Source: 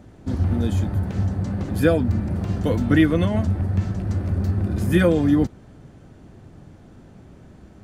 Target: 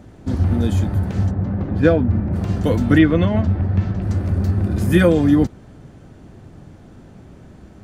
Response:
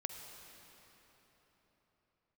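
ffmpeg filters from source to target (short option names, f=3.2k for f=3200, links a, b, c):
-filter_complex "[0:a]asplit=3[a][b][c];[a]afade=t=out:st=1.3:d=0.02[d];[b]adynamicsmooth=sensitivity=1:basefreq=2k,afade=t=in:st=1.3:d=0.02,afade=t=out:st=2.32:d=0.02[e];[c]afade=t=in:st=2.32:d=0.02[f];[d][e][f]amix=inputs=3:normalize=0,asettb=1/sr,asplit=3[g][h][i];[g]atrim=end=2.984[j];[h]atrim=start=2.98:end=4.02,asetpts=PTS-STARTPTS,afade=t=in:d=0.004:c=qsin,afade=t=out:st=1.036:d=0.004:c=qsin,lowpass=4k[k];[i]atrim=start=4.016[l];[j][k]acrossfade=d=0.004:c1=hsin:c2=qsin[m];[m][l]acrossfade=d=0.004:c1=qsin:c2=hsin,volume=3.5dB"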